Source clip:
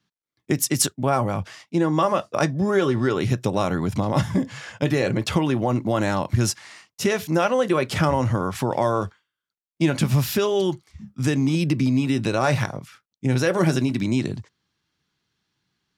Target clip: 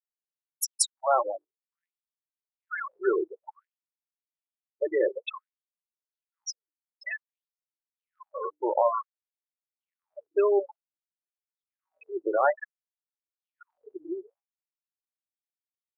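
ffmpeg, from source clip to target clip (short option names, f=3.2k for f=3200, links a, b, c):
-af "afftfilt=real='re*gte(hypot(re,im),0.2)':imag='im*gte(hypot(re,im),0.2)':win_size=1024:overlap=0.75,bandreject=f=50:t=h:w=6,bandreject=f=100:t=h:w=6,bandreject=f=150:t=h:w=6,bandreject=f=200:t=h:w=6,bandreject=f=250:t=h:w=6,bandreject=f=300:t=h:w=6,afftfilt=real='re*gte(b*sr/1024,310*pow(5900/310,0.5+0.5*sin(2*PI*0.55*pts/sr)))':imag='im*gte(b*sr/1024,310*pow(5900/310,0.5+0.5*sin(2*PI*0.55*pts/sr)))':win_size=1024:overlap=0.75"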